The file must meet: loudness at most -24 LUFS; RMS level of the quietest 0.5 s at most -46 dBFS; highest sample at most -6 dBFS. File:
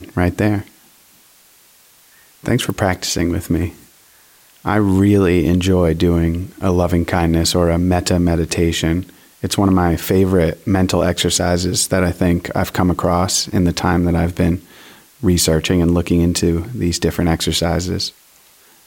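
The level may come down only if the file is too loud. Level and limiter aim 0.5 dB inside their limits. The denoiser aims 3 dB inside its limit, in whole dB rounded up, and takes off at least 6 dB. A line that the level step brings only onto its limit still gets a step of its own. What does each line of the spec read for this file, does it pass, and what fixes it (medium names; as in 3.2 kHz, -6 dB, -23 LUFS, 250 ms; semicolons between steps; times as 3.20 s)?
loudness -16.5 LUFS: fail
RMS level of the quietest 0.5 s -50 dBFS: pass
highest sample -4.0 dBFS: fail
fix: trim -8 dB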